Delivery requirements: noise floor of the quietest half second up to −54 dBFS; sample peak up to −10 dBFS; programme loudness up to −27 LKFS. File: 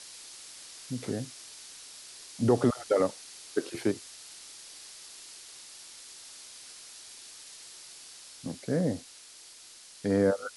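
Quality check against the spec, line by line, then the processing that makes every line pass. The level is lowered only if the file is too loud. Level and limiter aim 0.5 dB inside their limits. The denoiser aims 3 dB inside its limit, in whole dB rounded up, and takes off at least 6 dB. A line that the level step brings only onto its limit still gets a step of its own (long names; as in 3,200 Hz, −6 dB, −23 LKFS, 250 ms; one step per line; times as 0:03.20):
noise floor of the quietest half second −51 dBFS: out of spec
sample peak −12.0 dBFS: in spec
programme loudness −31.0 LKFS: in spec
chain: broadband denoise 6 dB, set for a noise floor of −51 dBFS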